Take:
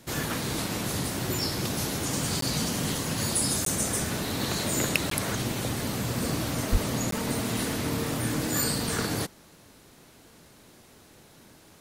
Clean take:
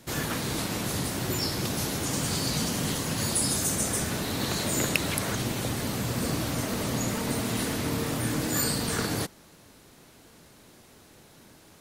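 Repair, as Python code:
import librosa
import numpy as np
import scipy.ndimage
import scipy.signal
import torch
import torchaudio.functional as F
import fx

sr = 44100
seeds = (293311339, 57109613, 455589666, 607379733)

y = fx.highpass(x, sr, hz=140.0, slope=24, at=(6.71, 6.83), fade=0.02)
y = fx.fix_interpolate(y, sr, at_s=(2.41, 3.65, 5.1, 7.11), length_ms=13.0)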